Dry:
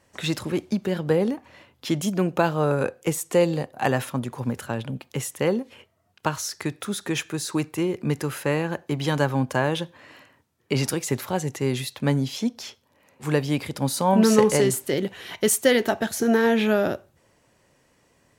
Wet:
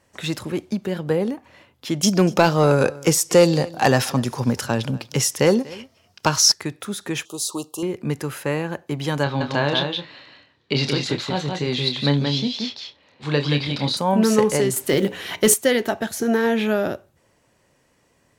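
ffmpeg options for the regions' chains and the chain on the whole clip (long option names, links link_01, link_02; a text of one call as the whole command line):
ffmpeg -i in.wav -filter_complex "[0:a]asettb=1/sr,asplit=3[link_01][link_02][link_03];[link_01]atrim=end=2.034[link_04];[link_02]atrim=start=2.03:end=6.52,asetpts=PTS-STARTPTS,afade=type=in:duration=0.004:curve=qsin,afade=type=out:start_time=4.486:duration=0.004:curve=qsin,acontrast=66,equalizer=frequency=5300:width=2.2:gain=13.5,aecho=1:1:241:0.0891,atrim=end_sample=198009[link_05];[link_03]atrim=start=6.516[link_06];[link_04][link_05]acrossfade=duration=0.004:curve1=hsin:curve2=qsin[link_07];[link_07][link_06]acrossfade=duration=0.004:curve1=qsin:curve2=hsin,asettb=1/sr,asplit=3[link_08][link_09][link_10];[link_08]atrim=end=7.254[link_11];[link_09]atrim=start=7.25:end=7.83,asetpts=PTS-STARTPTS,afade=type=in:duration=0.004:curve=qsin,afade=type=out:start_time=0.576:duration=0.004:curve=qsin,asuperstop=centerf=1900:order=12:qfactor=1.2,bass=frequency=250:gain=-13,treble=frequency=4000:gain=7[link_12];[link_10]atrim=start=7.826[link_13];[link_11][link_12]acrossfade=duration=0.004:curve1=hsin:curve2=qsin[link_14];[link_14][link_13]acrossfade=duration=0.004:curve1=qsin:curve2=hsin,asettb=1/sr,asplit=3[link_15][link_16][link_17];[link_15]atrim=end=9.234[link_18];[link_16]atrim=start=9.23:end=13.97,asetpts=PTS-STARTPTS,afade=type=in:duration=0.004:curve=qsin,afade=type=out:start_time=4.736:duration=0.004:curve=qsin,lowpass=frequency=4000:width_type=q:width=4.6,asplit=2[link_19][link_20];[link_20]adelay=28,volume=-7.5dB[link_21];[link_19][link_21]amix=inputs=2:normalize=0,atrim=end_sample=209034,aecho=1:1:176:0.596,atrim=end_sample=209034[link_22];[link_17]atrim=start=13.966[link_23];[link_18][link_22]acrossfade=duration=0.004:curve1=hsin:curve2=qsin[link_24];[link_24][link_23]acrossfade=duration=0.004:curve1=qsin:curve2=hsin,asettb=1/sr,asplit=3[link_25][link_26][link_27];[link_25]atrim=end=14.764[link_28];[link_26]atrim=start=14.76:end=15.54,asetpts=PTS-STARTPTS,afade=type=in:duration=0.004:curve=qsin,afade=type=out:start_time=0.776:duration=0.004:curve=qsin,acrusher=bits=8:mode=log:mix=0:aa=0.000001,acontrast=75,bandreject=frequency=60:width_type=h:width=6,bandreject=frequency=120:width_type=h:width=6,bandreject=frequency=180:width_type=h:width=6,bandreject=frequency=240:width_type=h:width=6,bandreject=frequency=300:width_type=h:width=6,bandreject=frequency=360:width_type=h:width=6,bandreject=frequency=420:width_type=h:width=6,bandreject=frequency=480:width_type=h:width=6,bandreject=frequency=540:width_type=h:width=6[link_29];[link_27]atrim=start=15.536[link_30];[link_28][link_29]acrossfade=duration=0.004:curve1=hsin:curve2=qsin[link_31];[link_31][link_30]acrossfade=duration=0.004:curve1=qsin:curve2=hsin" out.wav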